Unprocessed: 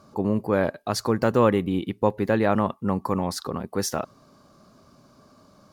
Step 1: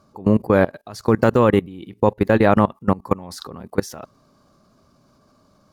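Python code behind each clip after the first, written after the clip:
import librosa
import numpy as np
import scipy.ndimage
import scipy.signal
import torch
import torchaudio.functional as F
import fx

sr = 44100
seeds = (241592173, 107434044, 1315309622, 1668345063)

y = fx.low_shelf(x, sr, hz=69.0, db=6.5)
y = fx.level_steps(y, sr, step_db=22)
y = y * librosa.db_to_amplitude(8.5)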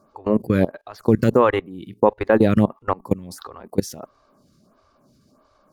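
y = fx.stagger_phaser(x, sr, hz=1.5)
y = y * librosa.db_to_amplitude(2.0)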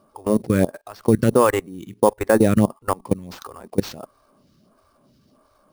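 y = fx.sample_hold(x, sr, seeds[0], rate_hz=10000.0, jitter_pct=0)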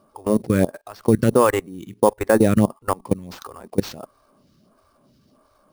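y = x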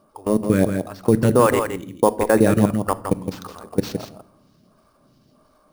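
y = x + 10.0 ** (-7.0 / 20.0) * np.pad(x, (int(165 * sr / 1000.0), 0))[:len(x)]
y = fx.room_shoebox(y, sr, seeds[1], volume_m3=1000.0, walls='furnished', distance_m=0.48)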